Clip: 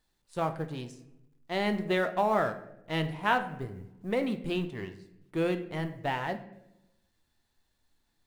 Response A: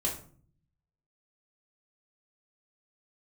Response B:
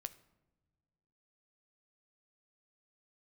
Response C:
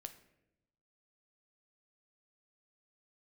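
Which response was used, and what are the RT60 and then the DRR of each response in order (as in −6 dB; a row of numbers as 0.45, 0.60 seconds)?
C; 0.50 s, non-exponential decay, 0.85 s; −3.5, 11.5, 8.0 decibels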